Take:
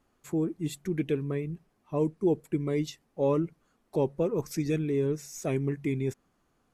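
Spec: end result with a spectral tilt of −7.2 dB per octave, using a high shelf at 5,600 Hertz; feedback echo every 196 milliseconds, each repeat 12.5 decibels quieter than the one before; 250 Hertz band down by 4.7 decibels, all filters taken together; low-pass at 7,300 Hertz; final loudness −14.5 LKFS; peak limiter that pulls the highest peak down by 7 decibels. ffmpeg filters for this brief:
ffmpeg -i in.wav -af "lowpass=7300,equalizer=frequency=250:width_type=o:gain=-7,highshelf=frequency=5600:gain=-7.5,alimiter=level_in=1.5dB:limit=-24dB:level=0:latency=1,volume=-1.5dB,aecho=1:1:196|392|588:0.237|0.0569|0.0137,volume=21.5dB" out.wav

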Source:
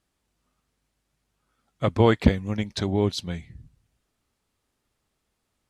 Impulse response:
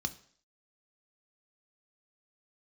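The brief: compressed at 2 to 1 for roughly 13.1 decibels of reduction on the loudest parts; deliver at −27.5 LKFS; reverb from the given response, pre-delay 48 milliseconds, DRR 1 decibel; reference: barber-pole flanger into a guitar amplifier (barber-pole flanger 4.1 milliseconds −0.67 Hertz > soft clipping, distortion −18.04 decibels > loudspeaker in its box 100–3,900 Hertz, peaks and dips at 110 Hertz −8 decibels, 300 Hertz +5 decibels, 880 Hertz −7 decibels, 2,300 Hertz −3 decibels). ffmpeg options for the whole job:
-filter_complex "[0:a]acompressor=threshold=-36dB:ratio=2,asplit=2[link_01][link_02];[1:a]atrim=start_sample=2205,adelay=48[link_03];[link_02][link_03]afir=irnorm=-1:irlink=0,volume=-3dB[link_04];[link_01][link_04]amix=inputs=2:normalize=0,asplit=2[link_05][link_06];[link_06]adelay=4.1,afreqshift=-0.67[link_07];[link_05][link_07]amix=inputs=2:normalize=1,asoftclip=threshold=-20.5dB,highpass=100,equalizer=frequency=110:width_type=q:width=4:gain=-8,equalizer=frequency=300:width_type=q:width=4:gain=5,equalizer=frequency=880:width_type=q:width=4:gain=-7,equalizer=frequency=2300:width_type=q:width=4:gain=-3,lowpass=frequency=3900:width=0.5412,lowpass=frequency=3900:width=1.3066,volume=8dB"

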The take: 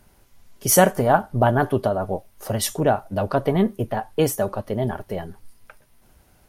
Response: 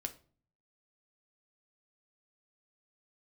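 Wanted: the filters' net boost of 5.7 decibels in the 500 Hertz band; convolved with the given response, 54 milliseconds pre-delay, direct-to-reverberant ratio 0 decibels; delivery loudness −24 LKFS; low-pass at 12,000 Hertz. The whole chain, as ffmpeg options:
-filter_complex "[0:a]lowpass=12000,equalizer=frequency=500:width_type=o:gain=7,asplit=2[link_01][link_02];[1:a]atrim=start_sample=2205,adelay=54[link_03];[link_02][link_03]afir=irnorm=-1:irlink=0,volume=1.5dB[link_04];[link_01][link_04]amix=inputs=2:normalize=0,volume=-9dB"

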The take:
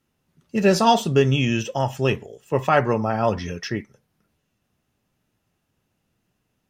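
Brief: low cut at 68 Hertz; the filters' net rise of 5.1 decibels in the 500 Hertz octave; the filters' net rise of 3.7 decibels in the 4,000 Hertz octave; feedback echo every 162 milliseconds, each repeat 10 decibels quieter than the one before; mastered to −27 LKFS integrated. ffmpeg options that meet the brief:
ffmpeg -i in.wav -af "highpass=68,equalizer=frequency=500:width_type=o:gain=6.5,equalizer=frequency=4000:width_type=o:gain=5,aecho=1:1:162|324|486|648:0.316|0.101|0.0324|0.0104,volume=-9dB" out.wav

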